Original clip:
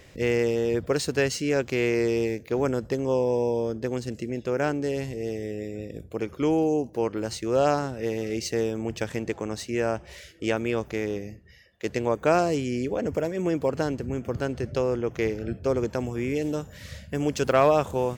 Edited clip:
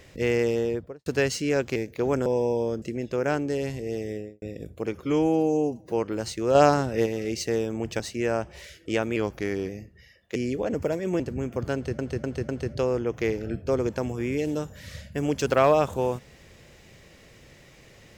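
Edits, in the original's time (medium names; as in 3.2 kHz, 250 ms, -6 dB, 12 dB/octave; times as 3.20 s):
0.55–1.06 s: studio fade out
1.76–2.28 s: delete
2.78–3.23 s: delete
3.79–4.16 s: delete
5.46–5.76 s: studio fade out
6.39–6.97 s: stretch 1.5×
7.60–8.11 s: gain +5 dB
9.05–9.54 s: delete
10.70–11.19 s: speed 93%
11.86–12.68 s: delete
13.52–13.92 s: delete
14.46–14.71 s: loop, 4 plays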